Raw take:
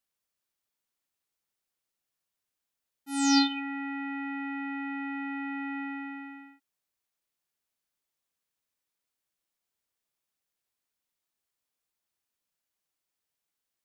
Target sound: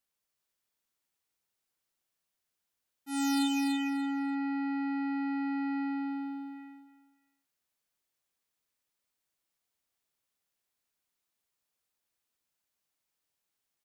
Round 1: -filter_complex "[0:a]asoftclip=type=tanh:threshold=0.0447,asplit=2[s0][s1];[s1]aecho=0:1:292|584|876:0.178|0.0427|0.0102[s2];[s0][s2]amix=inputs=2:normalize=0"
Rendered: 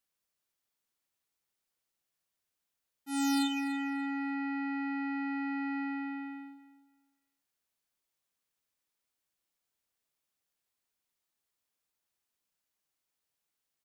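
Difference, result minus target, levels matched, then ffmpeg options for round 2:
echo-to-direct -10 dB
-filter_complex "[0:a]asoftclip=type=tanh:threshold=0.0447,asplit=2[s0][s1];[s1]aecho=0:1:292|584|876:0.562|0.135|0.0324[s2];[s0][s2]amix=inputs=2:normalize=0"

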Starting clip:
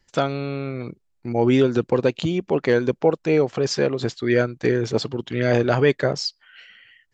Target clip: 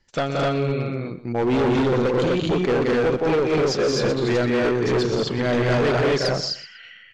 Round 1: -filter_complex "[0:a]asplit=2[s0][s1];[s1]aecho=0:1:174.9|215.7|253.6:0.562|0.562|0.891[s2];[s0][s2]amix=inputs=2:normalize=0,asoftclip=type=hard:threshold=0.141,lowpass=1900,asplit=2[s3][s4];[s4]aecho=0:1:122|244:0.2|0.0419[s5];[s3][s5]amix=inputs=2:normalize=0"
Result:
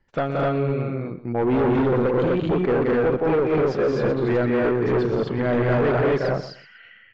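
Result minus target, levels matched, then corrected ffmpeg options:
8 kHz band -19.5 dB
-filter_complex "[0:a]asplit=2[s0][s1];[s1]aecho=0:1:174.9|215.7|253.6:0.562|0.562|0.891[s2];[s0][s2]amix=inputs=2:normalize=0,asoftclip=type=hard:threshold=0.141,lowpass=6900,asplit=2[s3][s4];[s4]aecho=0:1:122|244:0.2|0.0419[s5];[s3][s5]amix=inputs=2:normalize=0"

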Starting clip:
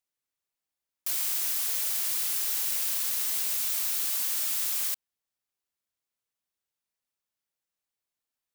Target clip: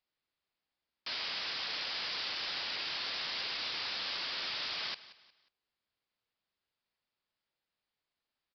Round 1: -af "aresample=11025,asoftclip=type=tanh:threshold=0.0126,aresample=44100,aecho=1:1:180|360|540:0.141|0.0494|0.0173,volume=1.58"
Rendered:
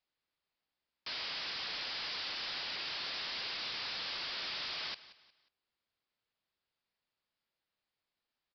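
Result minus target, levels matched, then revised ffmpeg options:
saturation: distortion +16 dB
-af "aresample=11025,asoftclip=type=tanh:threshold=0.0422,aresample=44100,aecho=1:1:180|360|540:0.141|0.0494|0.0173,volume=1.58"

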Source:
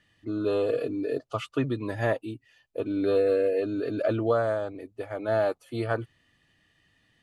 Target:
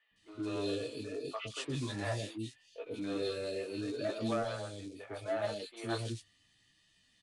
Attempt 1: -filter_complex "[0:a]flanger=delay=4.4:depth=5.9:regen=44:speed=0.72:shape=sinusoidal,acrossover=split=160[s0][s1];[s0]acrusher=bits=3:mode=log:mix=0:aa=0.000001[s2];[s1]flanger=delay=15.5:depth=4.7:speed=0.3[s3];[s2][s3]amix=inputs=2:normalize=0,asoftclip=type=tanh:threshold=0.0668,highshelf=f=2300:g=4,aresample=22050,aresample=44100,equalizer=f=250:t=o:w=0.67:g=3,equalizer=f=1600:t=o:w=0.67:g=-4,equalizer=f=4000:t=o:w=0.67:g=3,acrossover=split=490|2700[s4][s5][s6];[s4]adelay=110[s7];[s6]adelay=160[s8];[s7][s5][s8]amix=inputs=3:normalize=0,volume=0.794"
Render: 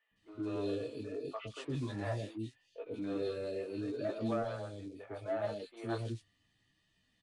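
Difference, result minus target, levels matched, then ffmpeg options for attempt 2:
4 kHz band -7.5 dB
-filter_complex "[0:a]flanger=delay=4.4:depth=5.9:regen=44:speed=0.72:shape=sinusoidal,acrossover=split=160[s0][s1];[s0]acrusher=bits=3:mode=log:mix=0:aa=0.000001[s2];[s1]flanger=delay=15.5:depth=4.7:speed=0.3[s3];[s2][s3]amix=inputs=2:normalize=0,asoftclip=type=tanh:threshold=0.0668,highshelf=f=2300:g=16,aresample=22050,aresample=44100,equalizer=f=250:t=o:w=0.67:g=3,equalizer=f=1600:t=o:w=0.67:g=-4,equalizer=f=4000:t=o:w=0.67:g=3,acrossover=split=490|2700[s4][s5][s6];[s4]adelay=110[s7];[s6]adelay=160[s8];[s7][s5][s8]amix=inputs=3:normalize=0,volume=0.794"

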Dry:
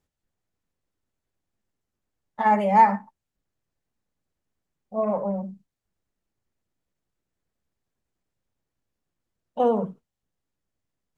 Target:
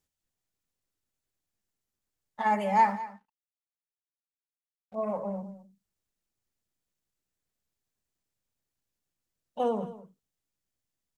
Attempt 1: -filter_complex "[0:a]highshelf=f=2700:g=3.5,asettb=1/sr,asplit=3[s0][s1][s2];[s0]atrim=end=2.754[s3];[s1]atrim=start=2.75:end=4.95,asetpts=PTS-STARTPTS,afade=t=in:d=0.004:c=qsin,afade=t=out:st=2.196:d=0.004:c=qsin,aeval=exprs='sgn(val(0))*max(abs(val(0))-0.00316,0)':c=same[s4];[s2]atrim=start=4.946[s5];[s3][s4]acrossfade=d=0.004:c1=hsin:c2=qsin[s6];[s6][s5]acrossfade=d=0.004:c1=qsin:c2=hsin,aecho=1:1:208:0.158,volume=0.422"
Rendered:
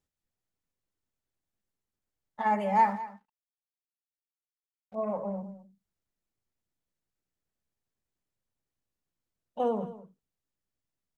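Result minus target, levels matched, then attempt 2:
4 kHz band -3.5 dB
-filter_complex "[0:a]highshelf=f=2700:g=11,asettb=1/sr,asplit=3[s0][s1][s2];[s0]atrim=end=2.754[s3];[s1]atrim=start=2.75:end=4.95,asetpts=PTS-STARTPTS,afade=t=in:d=0.004:c=qsin,afade=t=out:st=2.196:d=0.004:c=qsin,aeval=exprs='sgn(val(0))*max(abs(val(0))-0.00316,0)':c=same[s4];[s2]atrim=start=4.946[s5];[s3][s4]acrossfade=d=0.004:c1=hsin:c2=qsin[s6];[s6][s5]acrossfade=d=0.004:c1=qsin:c2=hsin,aecho=1:1:208:0.158,volume=0.422"

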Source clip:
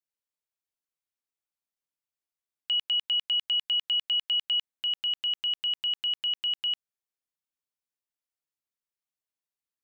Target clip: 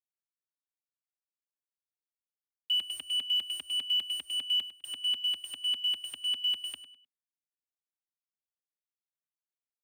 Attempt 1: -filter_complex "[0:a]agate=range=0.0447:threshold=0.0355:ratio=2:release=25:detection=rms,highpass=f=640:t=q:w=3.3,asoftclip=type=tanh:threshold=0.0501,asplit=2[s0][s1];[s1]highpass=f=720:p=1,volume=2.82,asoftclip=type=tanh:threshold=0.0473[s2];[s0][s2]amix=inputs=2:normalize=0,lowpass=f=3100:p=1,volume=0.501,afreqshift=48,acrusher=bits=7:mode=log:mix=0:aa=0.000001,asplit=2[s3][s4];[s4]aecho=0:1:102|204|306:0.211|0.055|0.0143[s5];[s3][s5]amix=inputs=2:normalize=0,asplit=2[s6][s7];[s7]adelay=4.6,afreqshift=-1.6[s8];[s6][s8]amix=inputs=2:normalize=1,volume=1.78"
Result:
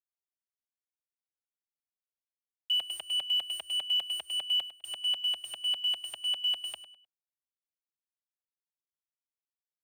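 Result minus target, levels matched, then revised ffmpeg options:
500 Hz band +8.5 dB
-filter_complex "[0:a]agate=range=0.0447:threshold=0.0355:ratio=2:release=25:detection=rms,highpass=f=210:t=q:w=3.3,asoftclip=type=tanh:threshold=0.0501,asplit=2[s0][s1];[s1]highpass=f=720:p=1,volume=2.82,asoftclip=type=tanh:threshold=0.0473[s2];[s0][s2]amix=inputs=2:normalize=0,lowpass=f=3100:p=1,volume=0.501,afreqshift=48,acrusher=bits=7:mode=log:mix=0:aa=0.000001,asplit=2[s3][s4];[s4]aecho=0:1:102|204|306:0.211|0.055|0.0143[s5];[s3][s5]amix=inputs=2:normalize=0,asplit=2[s6][s7];[s7]adelay=4.6,afreqshift=-1.6[s8];[s6][s8]amix=inputs=2:normalize=1,volume=1.78"

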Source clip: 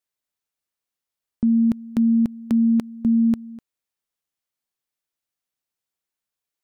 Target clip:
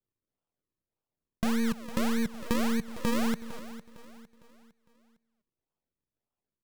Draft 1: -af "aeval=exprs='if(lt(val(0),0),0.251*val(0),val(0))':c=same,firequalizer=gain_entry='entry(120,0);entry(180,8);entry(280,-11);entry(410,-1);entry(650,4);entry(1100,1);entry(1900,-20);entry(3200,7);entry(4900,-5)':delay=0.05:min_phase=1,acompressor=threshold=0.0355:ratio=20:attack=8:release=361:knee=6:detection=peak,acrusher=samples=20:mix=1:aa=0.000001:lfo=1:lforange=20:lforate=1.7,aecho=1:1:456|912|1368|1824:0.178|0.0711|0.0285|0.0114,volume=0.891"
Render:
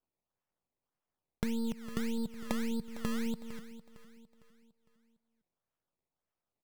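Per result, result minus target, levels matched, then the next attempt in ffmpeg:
compression: peak gain reduction +6.5 dB; decimation with a swept rate: distortion -6 dB
-af "aeval=exprs='if(lt(val(0),0),0.251*val(0),val(0))':c=same,firequalizer=gain_entry='entry(120,0);entry(180,8);entry(280,-11);entry(410,-1);entry(650,4);entry(1100,1);entry(1900,-20);entry(3200,7);entry(4900,-5)':delay=0.05:min_phase=1,acompressor=threshold=0.0794:ratio=20:attack=8:release=361:knee=6:detection=peak,acrusher=samples=20:mix=1:aa=0.000001:lfo=1:lforange=20:lforate=1.7,aecho=1:1:456|912|1368|1824:0.178|0.0711|0.0285|0.0114,volume=0.891"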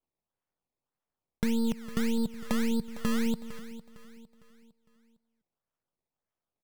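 decimation with a swept rate: distortion -7 dB
-af "aeval=exprs='if(lt(val(0),0),0.251*val(0),val(0))':c=same,firequalizer=gain_entry='entry(120,0);entry(180,8);entry(280,-11);entry(410,-1);entry(650,4);entry(1100,1);entry(1900,-20);entry(3200,7);entry(4900,-5)':delay=0.05:min_phase=1,acompressor=threshold=0.0794:ratio=20:attack=8:release=361:knee=6:detection=peak,acrusher=samples=42:mix=1:aa=0.000001:lfo=1:lforange=42:lforate=1.7,aecho=1:1:456|912|1368|1824:0.178|0.0711|0.0285|0.0114,volume=0.891"

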